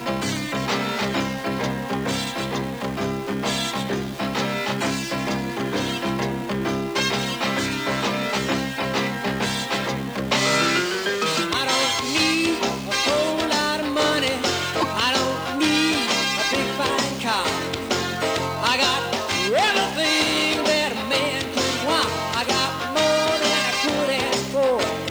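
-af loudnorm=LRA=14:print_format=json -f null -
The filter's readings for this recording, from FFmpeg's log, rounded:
"input_i" : "-21.7",
"input_tp" : "-6.4",
"input_lra" : "4.5",
"input_thresh" : "-31.7",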